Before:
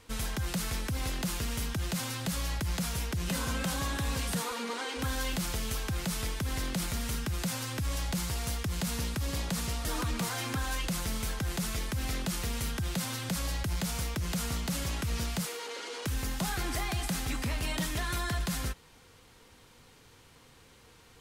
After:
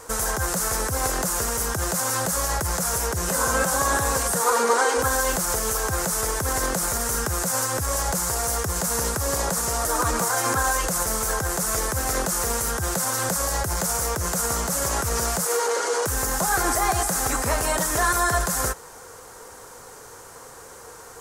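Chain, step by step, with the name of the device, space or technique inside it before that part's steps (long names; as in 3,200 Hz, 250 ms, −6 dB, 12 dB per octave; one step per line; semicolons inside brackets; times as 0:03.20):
over-bright horn tweeter (high shelf with overshoot 4,900 Hz +12 dB, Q 1.5; brickwall limiter −21.5 dBFS, peak gain reduction 9 dB)
flat-topped bell 810 Hz +13 dB 2.5 octaves
level +5.5 dB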